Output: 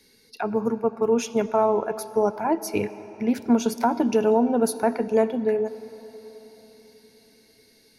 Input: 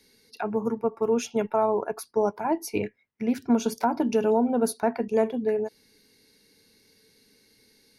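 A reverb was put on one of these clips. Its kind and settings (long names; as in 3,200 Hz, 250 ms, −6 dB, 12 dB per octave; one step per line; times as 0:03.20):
comb and all-pass reverb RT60 4.3 s, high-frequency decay 0.65×, pre-delay 35 ms, DRR 15 dB
level +2.5 dB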